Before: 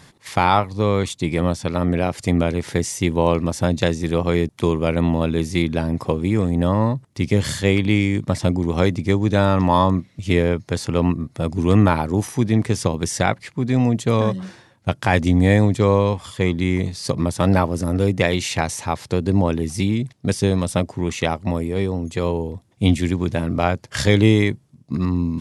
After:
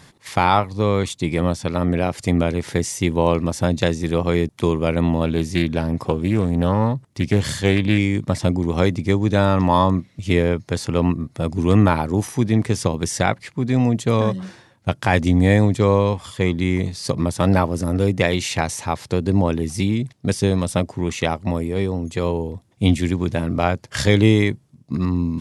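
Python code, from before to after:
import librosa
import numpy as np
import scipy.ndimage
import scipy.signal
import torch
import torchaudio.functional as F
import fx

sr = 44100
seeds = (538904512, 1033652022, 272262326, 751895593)

y = fx.doppler_dist(x, sr, depth_ms=0.21, at=(5.25, 7.98))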